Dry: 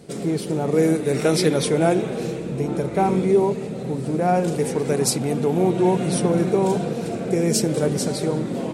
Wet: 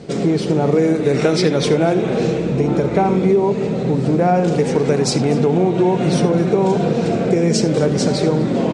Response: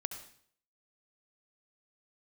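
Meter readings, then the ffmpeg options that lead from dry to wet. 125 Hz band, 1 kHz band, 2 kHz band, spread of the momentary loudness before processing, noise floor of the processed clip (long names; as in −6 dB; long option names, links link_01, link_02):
+6.0 dB, +4.0 dB, +4.5 dB, 7 LU, −21 dBFS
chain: -filter_complex "[0:a]lowpass=frequency=7100:width=0.5412,lowpass=frequency=7100:width=1.3066,acompressor=threshold=-21dB:ratio=6,aecho=1:1:248:0.1,asplit=2[link_01][link_02];[1:a]atrim=start_sample=2205,atrim=end_sample=3969,highshelf=frequency=7800:gain=-10.5[link_03];[link_02][link_03]afir=irnorm=-1:irlink=0,volume=3.5dB[link_04];[link_01][link_04]amix=inputs=2:normalize=0,volume=2dB"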